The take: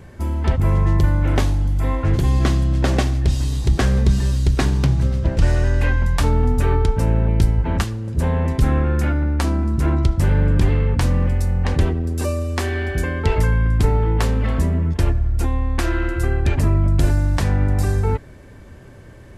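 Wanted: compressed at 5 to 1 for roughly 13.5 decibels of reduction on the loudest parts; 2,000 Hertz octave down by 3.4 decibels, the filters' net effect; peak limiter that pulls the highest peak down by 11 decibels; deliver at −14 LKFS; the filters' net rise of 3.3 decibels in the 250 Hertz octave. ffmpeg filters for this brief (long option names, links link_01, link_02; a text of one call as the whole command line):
ffmpeg -i in.wav -af "equalizer=frequency=250:width_type=o:gain=4.5,equalizer=frequency=2000:width_type=o:gain=-4.5,acompressor=threshold=-26dB:ratio=5,volume=20.5dB,alimiter=limit=-5dB:level=0:latency=1" out.wav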